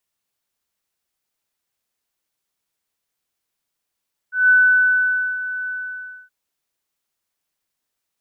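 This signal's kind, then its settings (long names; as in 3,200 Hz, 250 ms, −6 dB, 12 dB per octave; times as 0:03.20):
note with an ADSR envelope sine 1,500 Hz, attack 169 ms, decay 885 ms, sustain −14 dB, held 1.36 s, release 613 ms −9 dBFS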